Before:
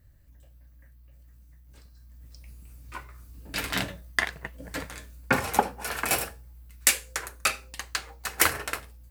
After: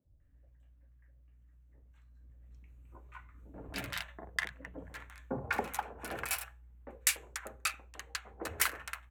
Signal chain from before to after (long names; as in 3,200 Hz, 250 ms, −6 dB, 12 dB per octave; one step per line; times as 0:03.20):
adaptive Wiener filter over 9 samples
three-band delay without the direct sound mids, lows, highs 50/200 ms, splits 160/820 Hz
level −8 dB